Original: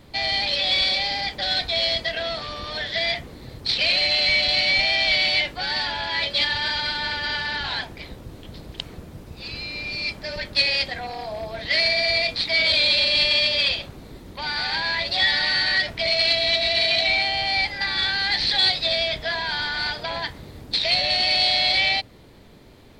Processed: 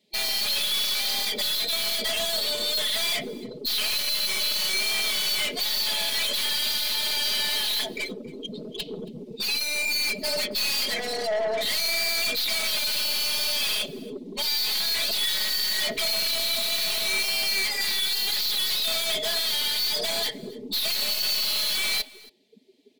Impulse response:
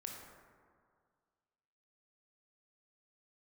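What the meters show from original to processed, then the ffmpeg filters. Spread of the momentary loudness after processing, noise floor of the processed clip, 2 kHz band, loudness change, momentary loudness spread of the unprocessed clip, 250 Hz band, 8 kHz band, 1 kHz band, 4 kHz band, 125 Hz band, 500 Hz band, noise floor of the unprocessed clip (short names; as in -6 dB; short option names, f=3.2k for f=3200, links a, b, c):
7 LU, -44 dBFS, -7.5 dB, -3.5 dB, 14 LU, -1.5 dB, +14.0 dB, -8.5 dB, -3.0 dB, -10.5 dB, -3.5 dB, -44 dBFS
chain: -af "highpass=250,afftdn=nr=32:nf=-36,lowpass=f=3.1k:p=1,lowshelf=f=790:t=q:w=1.5:g=11,aexciter=amount=11.7:drive=6.5:freq=2.1k,aeval=exprs='(tanh(25.1*val(0)+0.2)-tanh(0.2))/25.1':c=same,aecho=1:1:4.7:0.78,aecho=1:1:275:0.0708"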